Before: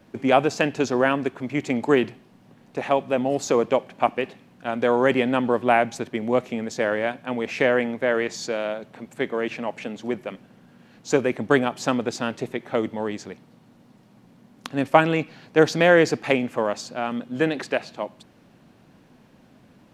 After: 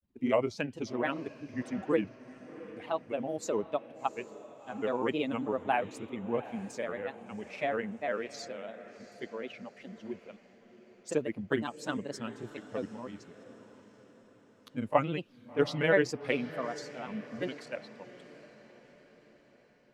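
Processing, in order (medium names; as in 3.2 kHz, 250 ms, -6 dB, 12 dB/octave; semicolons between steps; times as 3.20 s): expander on every frequency bin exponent 1.5; granulator, spray 22 ms, pitch spread up and down by 3 st; echo that smears into a reverb 728 ms, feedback 49%, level -15.5 dB; trim -6.5 dB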